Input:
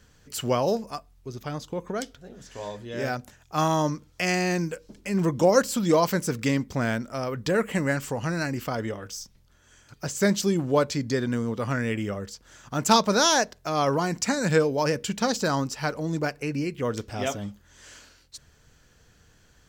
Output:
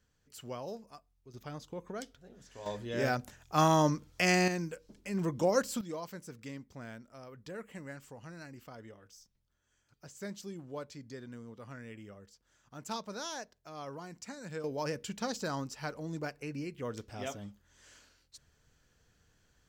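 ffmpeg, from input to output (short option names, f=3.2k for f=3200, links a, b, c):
-af "asetnsamples=n=441:p=0,asendcmd='1.34 volume volume -10.5dB;2.66 volume volume -2dB;4.48 volume volume -9dB;5.81 volume volume -20dB;14.64 volume volume -11dB',volume=-17.5dB"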